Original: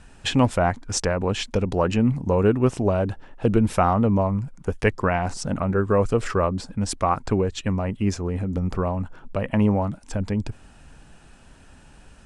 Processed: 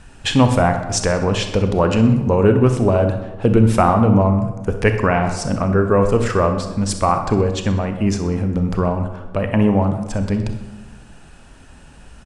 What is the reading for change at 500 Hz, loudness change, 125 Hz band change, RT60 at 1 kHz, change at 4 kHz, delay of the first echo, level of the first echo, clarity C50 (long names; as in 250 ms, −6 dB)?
+5.5 dB, +6.0 dB, +6.5 dB, 1.1 s, +5.5 dB, 63 ms, −15.0 dB, 7.5 dB